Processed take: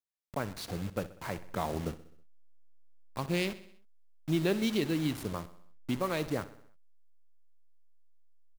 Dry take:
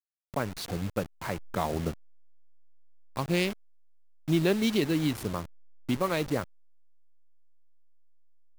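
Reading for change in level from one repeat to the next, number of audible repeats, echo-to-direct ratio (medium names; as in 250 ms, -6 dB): -5.0 dB, 4, -14.5 dB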